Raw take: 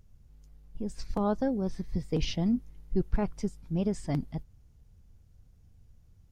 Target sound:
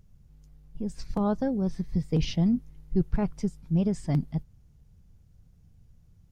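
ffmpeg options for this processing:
-af "equalizer=f=160:t=o:w=0.7:g=7"

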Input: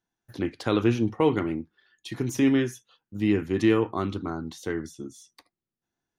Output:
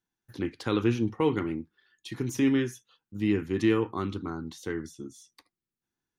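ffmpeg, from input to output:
-af "equalizer=f=650:w=3.9:g=-9.5,volume=0.75"

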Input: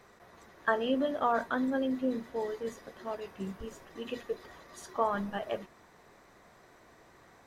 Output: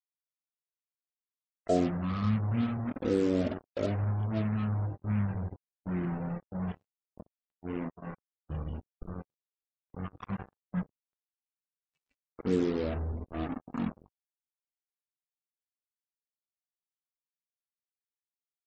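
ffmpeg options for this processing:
-af "acrusher=bits=5:mix=0:aa=0.5,asetrate=17640,aresample=44100,afftdn=nr=29:nf=-51"

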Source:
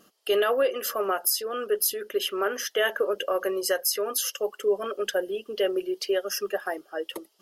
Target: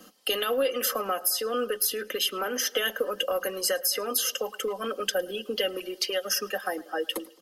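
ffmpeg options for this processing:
-filter_complex "[0:a]asplit=2[s0][s1];[s1]adelay=107,lowpass=f=3300:p=1,volume=0.0708,asplit=2[s2][s3];[s3]adelay=107,lowpass=f=3300:p=1,volume=0.46,asplit=2[s4][s5];[s5]adelay=107,lowpass=f=3300:p=1,volume=0.46[s6];[s0][s2][s4][s6]amix=inputs=4:normalize=0,acrossover=split=310[s7][s8];[s7]volume=37.6,asoftclip=hard,volume=0.0266[s9];[s9][s8]amix=inputs=2:normalize=0,acrossover=split=240|940|3200[s10][s11][s12][s13];[s10]acompressor=threshold=0.00562:ratio=4[s14];[s11]acompressor=threshold=0.0126:ratio=4[s15];[s12]acompressor=threshold=0.00794:ratio=4[s16];[s13]acompressor=threshold=0.0224:ratio=4[s17];[s14][s15][s16][s17]amix=inputs=4:normalize=0,aecho=1:1:3.9:0.62,volume=2"

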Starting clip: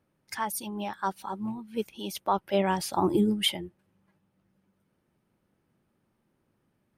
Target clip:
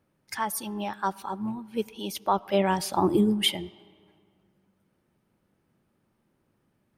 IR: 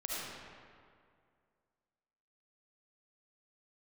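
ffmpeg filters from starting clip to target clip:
-filter_complex "[0:a]asplit=2[s0][s1];[1:a]atrim=start_sample=2205,highshelf=f=7700:g=-10.5[s2];[s1][s2]afir=irnorm=-1:irlink=0,volume=0.0668[s3];[s0][s3]amix=inputs=2:normalize=0,volume=1.19"

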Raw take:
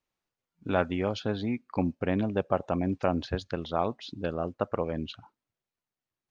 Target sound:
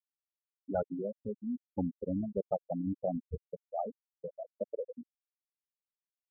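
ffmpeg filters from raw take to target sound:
-af "afwtdn=0.02,highshelf=f=3800:t=q:w=3:g=-6,afftfilt=real='re*gte(hypot(re,im),0.2)':imag='im*gte(hypot(re,im),0.2)':win_size=1024:overlap=0.75,volume=0.596"

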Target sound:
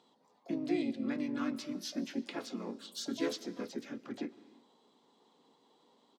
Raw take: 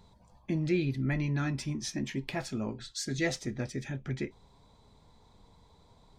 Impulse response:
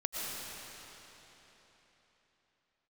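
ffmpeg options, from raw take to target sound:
-filter_complex "[0:a]highpass=f=260:w=0.5412,highpass=f=260:w=1.3066,equalizer=f=280:t=q:w=4:g=9,equalizer=f=490:t=q:w=4:g=5,equalizer=f=700:t=q:w=4:g=-5,equalizer=f=1200:t=q:w=4:g=6,equalizer=f=2000:t=q:w=4:g=-7,equalizer=f=4300:t=q:w=4:g=3,lowpass=f=8100:w=0.5412,lowpass=f=8100:w=1.3066,asplit=3[s0][s1][s2];[s1]asetrate=37084,aresample=44100,atempo=1.18921,volume=0.891[s3];[s2]asetrate=88200,aresample=44100,atempo=0.5,volume=0.2[s4];[s0][s3][s4]amix=inputs=3:normalize=0,asplit=2[s5][s6];[1:a]atrim=start_sample=2205,afade=t=out:st=0.41:d=0.01,atrim=end_sample=18522[s7];[s6][s7]afir=irnorm=-1:irlink=0,volume=0.112[s8];[s5][s8]amix=inputs=2:normalize=0,volume=0.376"

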